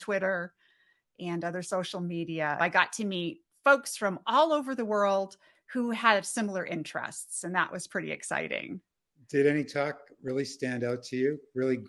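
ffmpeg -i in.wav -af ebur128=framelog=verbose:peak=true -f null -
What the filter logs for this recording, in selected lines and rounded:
Integrated loudness:
  I:         -29.6 LUFS
  Threshold: -40.1 LUFS
Loudness range:
  LRA:         4.4 LU
  Threshold: -49.6 LUFS
  LRA low:   -31.8 LUFS
  LRA high:  -27.4 LUFS
True peak:
  Peak:       -6.6 dBFS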